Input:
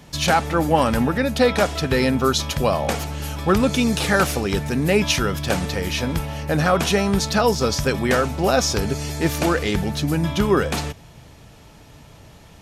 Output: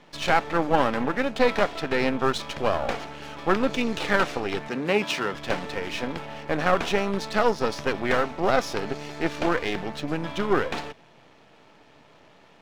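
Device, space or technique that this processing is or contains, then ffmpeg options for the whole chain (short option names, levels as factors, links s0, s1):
crystal radio: -filter_complex "[0:a]highpass=280,lowpass=3200,aeval=exprs='if(lt(val(0),0),0.251*val(0),val(0))':c=same,asettb=1/sr,asplit=3[s0][s1][s2];[s0]atrim=end=4.684[s3];[s1]atrim=start=4.68:end=5.34,asetpts=PTS-STARTPTS,afade=t=in:d=0.004:c=qsin,afade=t=out:st=0.656:d=0.004:c=qsin,highpass=f=130:w=0.5412,highpass=f=130:w=1.3066[s4];[s2]atrim=start=5.336[s5];[s3][s4]acrossfade=d=0.004:c1=hsin:c2=qsin[s6];[s6][s5]acrossfade=d=0.004:c1=qsin:c2=hsin"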